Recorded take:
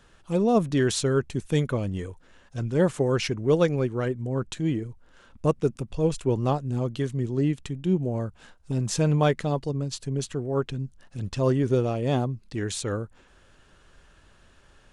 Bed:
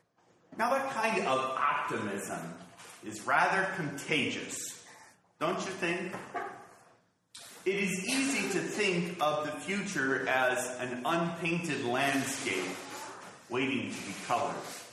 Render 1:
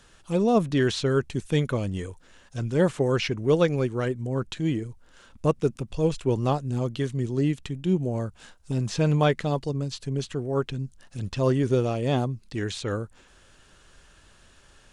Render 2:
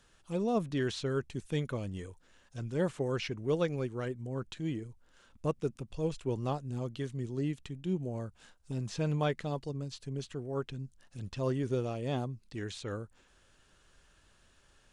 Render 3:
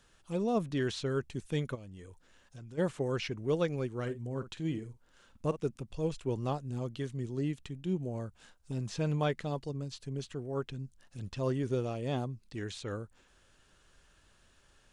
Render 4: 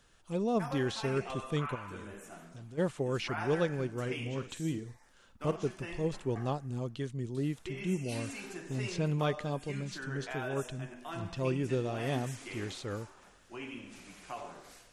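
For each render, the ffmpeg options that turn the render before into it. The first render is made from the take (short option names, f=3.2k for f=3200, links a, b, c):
-filter_complex "[0:a]acrossover=split=4200[a][b];[b]acompressor=threshold=-54dB:ratio=4:attack=1:release=60[c];[a][c]amix=inputs=2:normalize=0,equalizer=f=8.7k:w=0.34:g=7.5"
-af "volume=-9.5dB"
-filter_complex "[0:a]asplit=3[a][b][c];[a]afade=t=out:st=1.74:d=0.02[d];[b]acompressor=threshold=-46dB:ratio=4:attack=3.2:release=140:knee=1:detection=peak,afade=t=in:st=1.74:d=0.02,afade=t=out:st=2.77:d=0.02[e];[c]afade=t=in:st=2.77:d=0.02[f];[d][e][f]amix=inputs=3:normalize=0,asettb=1/sr,asplit=3[g][h][i];[g]atrim=end=3.914[j];[h]atrim=start=3.91:end=5.57,asetpts=PTS-STARTPTS,afade=t=in:d=0.004:c=qsin,afade=t=out:st=1.656:d=0.004:c=qsin,asplit=2[k][l];[l]adelay=50,volume=-12.5dB[m];[k][m]amix=inputs=2:normalize=0,atrim=end_sample=73206[n];[i]atrim=start=5.566[o];[j][n]acrossfade=d=0.004:c1=hsin:c2=qsin[p];[p][o]acrossfade=d=0.004:c1=qsin:c2=hsin"
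-filter_complex "[1:a]volume=-12dB[a];[0:a][a]amix=inputs=2:normalize=0"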